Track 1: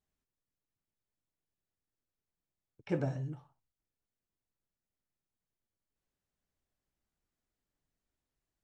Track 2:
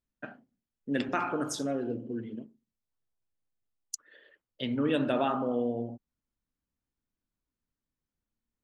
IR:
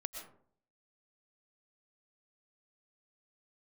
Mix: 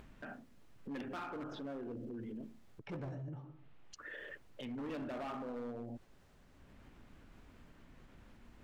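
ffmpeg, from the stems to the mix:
-filter_complex "[0:a]lowpass=frequency=2100:poles=1,acompressor=mode=upward:threshold=-47dB:ratio=2.5,volume=-1.5dB,asplit=3[link_01][link_02][link_03];[link_02]volume=-3dB[link_04];[1:a]lowpass=frequency=2900:width=0.5412,lowpass=frequency=2900:width=1.3066,acompressor=mode=upward:threshold=-33dB:ratio=2.5,volume=-1dB[link_05];[link_03]apad=whole_len=380878[link_06];[link_05][link_06]sidechaincompress=threshold=-59dB:ratio=8:attack=8.9:release=242[link_07];[2:a]atrim=start_sample=2205[link_08];[link_04][link_08]afir=irnorm=-1:irlink=0[link_09];[link_01][link_07][link_09]amix=inputs=3:normalize=0,volume=29.5dB,asoftclip=hard,volume=-29.5dB,alimiter=level_in=15dB:limit=-24dB:level=0:latency=1:release=14,volume=-15dB"

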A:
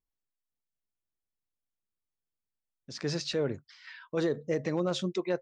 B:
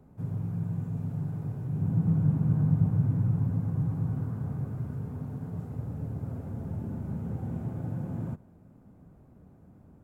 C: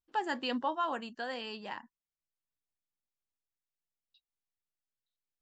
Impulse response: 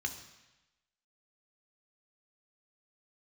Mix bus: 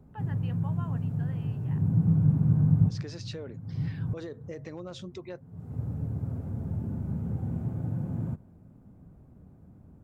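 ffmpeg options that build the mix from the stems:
-filter_complex "[0:a]acompressor=threshold=-36dB:ratio=2,volume=-5dB,asplit=2[link_01][link_02];[1:a]lowshelf=frequency=250:gain=7,volume=-3dB[link_03];[2:a]lowpass=frequency=2700:width=0.5412,lowpass=frequency=2700:width=1.3066,volume=-13dB[link_04];[link_02]apad=whole_len=442347[link_05];[link_03][link_05]sidechaincompress=threshold=-56dB:ratio=20:attack=31:release=332[link_06];[link_01][link_06][link_04]amix=inputs=3:normalize=0"

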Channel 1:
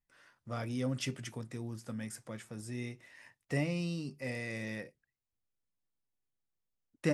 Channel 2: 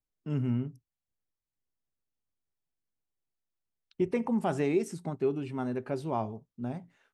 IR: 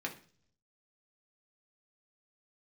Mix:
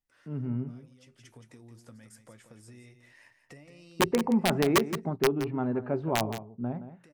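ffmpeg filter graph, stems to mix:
-filter_complex "[0:a]equalizer=frequency=180:width=4.6:gain=-9,acompressor=threshold=-47dB:ratio=10,volume=-1.5dB,asplit=2[link_01][link_02];[link_02]volume=-10dB[link_03];[1:a]lowpass=1600,dynaudnorm=framelen=310:gausssize=5:maxgain=8.5dB,aeval=exprs='(mod(3.55*val(0)+1,2)-1)/3.55':channel_layout=same,volume=-5dB,asplit=3[link_04][link_05][link_06];[link_05]volume=-12dB[link_07];[link_06]apad=whole_len=314651[link_08];[link_01][link_08]sidechaincompress=threshold=-47dB:ratio=10:attack=5.9:release=549[link_09];[link_03][link_07]amix=inputs=2:normalize=0,aecho=0:1:171:1[link_10];[link_09][link_04][link_10]amix=inputs=3:normalize=0"

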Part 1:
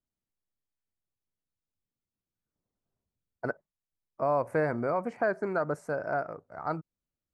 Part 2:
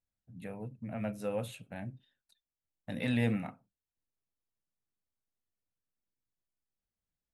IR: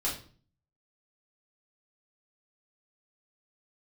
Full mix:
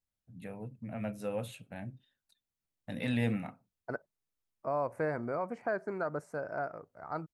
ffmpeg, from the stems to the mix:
-filter_complex "[0:a]adelay=450,volume=-5.5dB[link_01];[1:a]volume=-1dB[link_02];[link_01][link_02]amix=inputs=2:normalize=0"

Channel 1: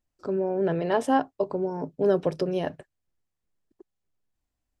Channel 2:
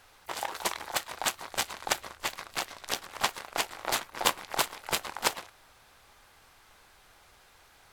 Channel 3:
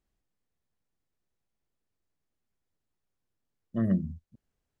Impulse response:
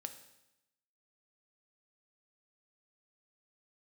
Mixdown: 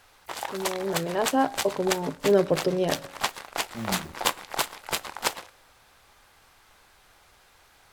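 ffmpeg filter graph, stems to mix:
-filter_complex "[0:a]dynaudnorm=framelen=410:gausssize=5:maxgain=10dB,adelay=250,volume=-9dB,asplit=2[link_01][link_02];[link_02]volume=-5dB[link_03];[1:a]volume=-0.5dB,asplit=2[link_04][link_05];[link_05]volume=-11.5dB[link_06];[2:a]acrusher=bits=5:mix=0:aa=0.000001,volume=-7.5dB[link_07];[3:a]atrim=start_sample=2205[link_08];[link_03][link_06]amix=inputs=2:normalize=0[link_09];[link_09][link_08]afir=irnorm=-1:irlink=0[link_10];[link_01][link_04][link_07][link_10]amix=inputs=4:normalize=0"

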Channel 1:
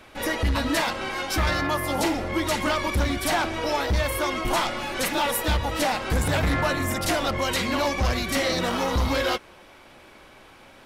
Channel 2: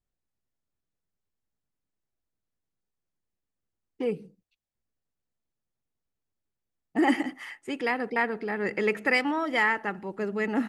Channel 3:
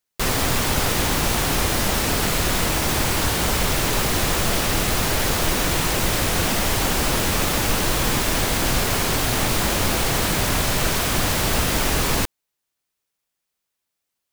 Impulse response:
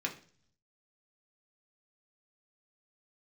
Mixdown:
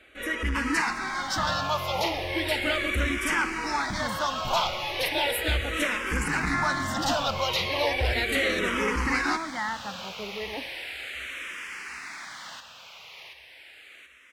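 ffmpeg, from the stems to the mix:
-filter_complex "[0:a]lowpass=frequency=2100:poles=1,tiltshelf=frequency=1200:gain=-6,volume=-2dB,asplit=2[link_01][link_02];[link_02]volume=-18dB[link_03];[1:a]volume=-8.5dB[link_04];[2:a]bandpass=frequency=2300:width_type=q:width=1.9:csg=0,adelay=350,volume=-11dB,asplit=2[link_05][link_06];[link_06]volume=-7dB[link_07];[link_03][link_07]amix=inputs=2:normalize=0,aecho=0:1:730|1460|2190|2920|3650|4380|5110|5840:1|0.52|0.27|0.141|0.0731|0.038|0.0198|0.0103[link_08];[link_01][link_04][link_05][link_08]amix=inputs=4:normalize=0,dynaudnorm=framelen=140:gausssize=5:maxgain=5dB,asplit=2[link_09][link_10];[link_10]afreqshift=-0.36[link_11];[link_09][link_11]amix=inputs=2:normalize=1"

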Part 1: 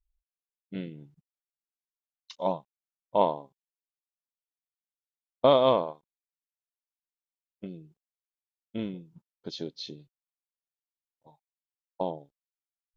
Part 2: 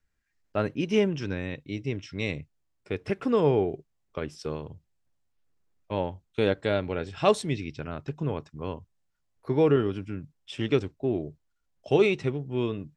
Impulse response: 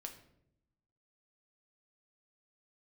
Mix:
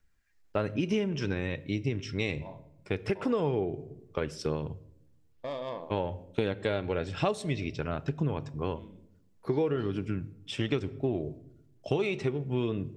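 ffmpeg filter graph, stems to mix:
-filter_complex "[0:a]asoftclip=type=tanh:threshold=-15.5dB,volume=-5dB,asplit=2[link_01][link_02];[link_02]volume=-10.5dB[link_03];[1:a]aphaser=in_gain=1:out_gain=1:delay=2.8:decay=0.25:speed=1.1:type=triangular,volume=0.5dB,asplit=3[link_04][link_05][link_06];[link_05]volume=-4.5dB[link_07];[link_06]apad=whole_len=571921[link_08];[link_01][link_08]sidechaincompress=threshold=-51dB:ratio=8:attack=35:release=1300[link_09];[2:a]atrim=start_sample=2205[link_10];[link_03][link_07]amix=inputs=2:normalize=0[link_11];[link_11][link_10]afir=irnorm=-1:irlink=0[link_12];[link_09][link_04][link_12]amix=inputs=3:normalize=0,acompressor=threshold=-25dB:ratio=8"

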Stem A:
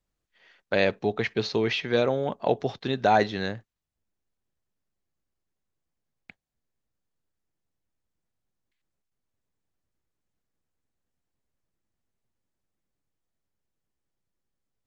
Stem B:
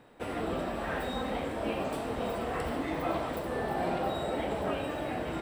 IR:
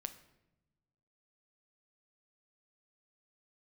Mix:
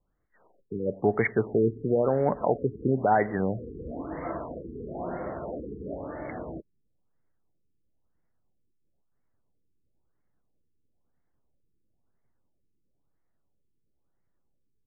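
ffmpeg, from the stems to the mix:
-filter_complex "[0:a]alimiter=limit=-18dB:level=0:latency=1:release=311,volume=3dB,asplit=4[link_01][link_02][link_03][link_04];[link_02]volume=-4dB[link_05];[link_03]volume=-20.5dB[link_06];[1:a]bandreject=frequency=790:width=12,adelay=1200,volume=-2dB[link_07];[link_04]apad=whole_len=291855[link_08];[link_07][link_08]sidechaincompress=threshold=-39dB:ratio=5:attack=32:release=161[link_09];[2:a]atrim=start_sample=2205[link_10];[link_05][link_10]afir=irnorm=-1:irlink=0[link_11];[link_06]aecho=0:1:98:1[link_12];[link_01][link_09][link_11][link_12]amix=inputs=4:normalize=0,afftfilt=real='re*lt(b*sr/1024,450*pow(2300/450,0.5+0.5*sin(2*PI*1*pts/sr)))':imag='im*lt(b*sr/1024,450*pow(2300/450,0.5+0.5*sin(2*PI*1*pts/sr)))':win_size=1024:overlap=0.75"

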